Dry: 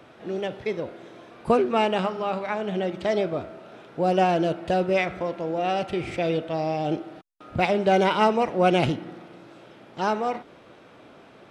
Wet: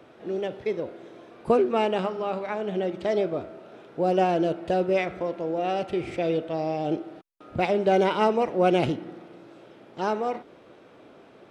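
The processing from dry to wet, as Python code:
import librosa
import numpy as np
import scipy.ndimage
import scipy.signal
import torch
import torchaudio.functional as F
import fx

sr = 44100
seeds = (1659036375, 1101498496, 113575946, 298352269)

y = fx.peak_eq(x, sr, hz=400.0, db=5.5, octaves=1.4)
y = F.gain(torch.from_numpy(y), -4.5).numpy()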